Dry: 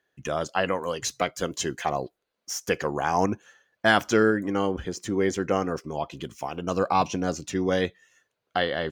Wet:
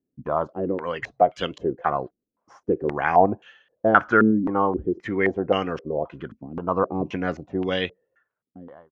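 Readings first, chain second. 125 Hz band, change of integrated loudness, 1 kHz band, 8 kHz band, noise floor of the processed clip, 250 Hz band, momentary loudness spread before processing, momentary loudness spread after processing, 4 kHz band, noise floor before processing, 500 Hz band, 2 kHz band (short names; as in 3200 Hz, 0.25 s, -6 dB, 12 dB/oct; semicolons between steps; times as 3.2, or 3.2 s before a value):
+0.5 dB, +3.0 dB, +4.0 dB, under -20 dB, -84 dBFS, +3.0 dB, 11 LU, 13 LU, -3.5 dB, -81 dBFS, +2.5 dB, +1.5 dB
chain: ending faded out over 1.45 s; stepped low-pass 3.8 Hz 250–2900 Hz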